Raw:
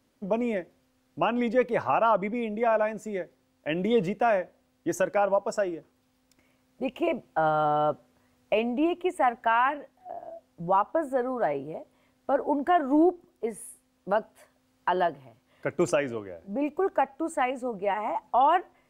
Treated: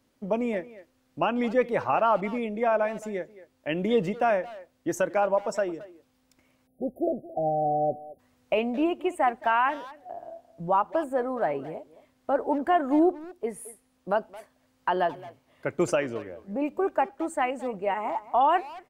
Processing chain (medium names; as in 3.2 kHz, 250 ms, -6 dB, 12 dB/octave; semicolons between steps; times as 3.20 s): speakerphone echo 220 ms, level -16 dB; spectral selection erased 6.67–8.19 s, 780–9400 Hz